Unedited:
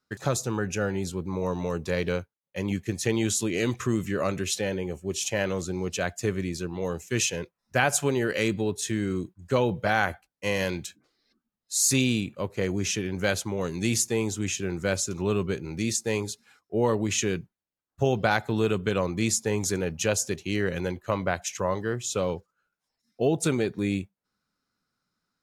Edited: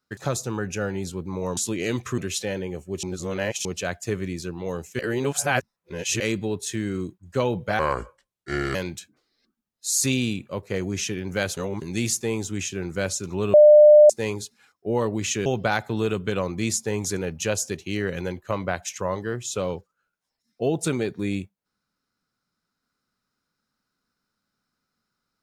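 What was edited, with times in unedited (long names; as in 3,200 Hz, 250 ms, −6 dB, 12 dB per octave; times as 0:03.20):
0:01.57–0:03.31: remove
0:03.92–0:04.34: remove
0:05.19–0:05.81: reverse
0:07.15–0:08.36: reverse
0:09.95–0:10.62: play speed 70%
0:13.44–0:13.69: reverse
0:15.41–0:15.97: beep over 600 Hz −7.5 dBFS
0:17.33–0:18.05: remove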